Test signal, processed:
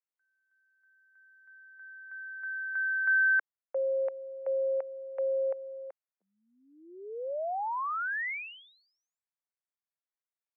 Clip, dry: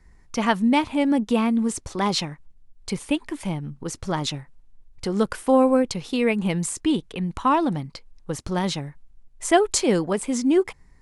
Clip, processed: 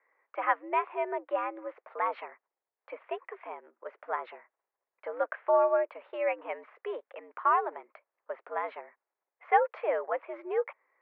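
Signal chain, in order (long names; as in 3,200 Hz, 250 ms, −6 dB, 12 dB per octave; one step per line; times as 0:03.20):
single-sideband voice off tune +97 Hz 420–2,100 Hz
level −4.5 dB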